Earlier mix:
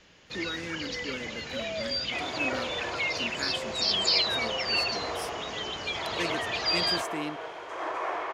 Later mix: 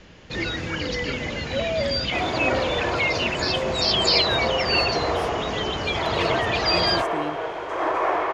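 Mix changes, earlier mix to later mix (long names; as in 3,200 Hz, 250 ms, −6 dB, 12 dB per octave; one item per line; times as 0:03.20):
first sound +8.5 dB
second sound +9.0 dB
master: add spectral tilt −2 dB per octave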